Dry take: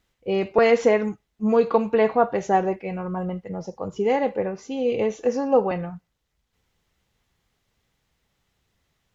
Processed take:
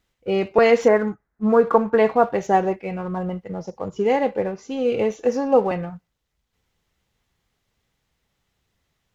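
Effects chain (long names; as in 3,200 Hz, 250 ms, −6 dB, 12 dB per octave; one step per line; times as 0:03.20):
0:00.88–0:01.98: high shelf with overshoot 2,200 Hz −11.5 dB, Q 3
in parallel at −7 dB: dead-zone distortion −38 dBFS
on the sum: level −1 dB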